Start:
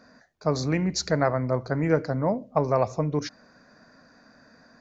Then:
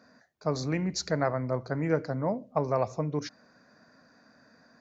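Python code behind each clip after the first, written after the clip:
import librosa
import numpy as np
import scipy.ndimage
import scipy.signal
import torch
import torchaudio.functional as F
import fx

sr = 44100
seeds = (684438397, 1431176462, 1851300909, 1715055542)

y = scipy.signal.sosfilt(scipy.signal.butter(2, 73.0, 'highpass', fs=sr, output='sos'), x)
y = y * librosa.db_to_amplitude(-4.5)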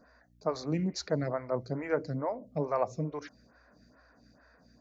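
y = fx.add_hum(x, sr, base_hz=60, snr_db=30)
y = fx.stagger_phaser(y, sr, hz=2.3)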